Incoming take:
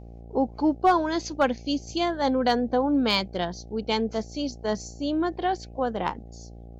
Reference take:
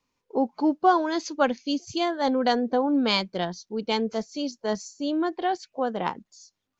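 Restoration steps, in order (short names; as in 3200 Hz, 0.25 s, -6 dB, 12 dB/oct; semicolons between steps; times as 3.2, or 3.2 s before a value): clip repair -12 dBFS; de-hum 57.7 Hz, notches 14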